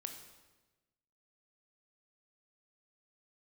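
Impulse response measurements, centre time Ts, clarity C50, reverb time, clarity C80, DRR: 25 ms, 7.0 dB, 1.2 s, 9.0 dB, 5.0 dB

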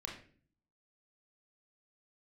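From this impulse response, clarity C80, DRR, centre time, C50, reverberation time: 10.0 dB, -1.0 dB, 30 ms, 5.5 dB, 0.45 s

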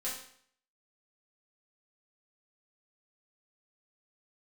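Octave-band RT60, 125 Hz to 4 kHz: 0.60, 0.60, 0.60, 0.60, 0.60, 0.55 s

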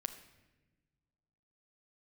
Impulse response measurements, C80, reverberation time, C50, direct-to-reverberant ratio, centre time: 12.5 dB, not exponential, 11.0 dB, 7.5 dB, 11 ms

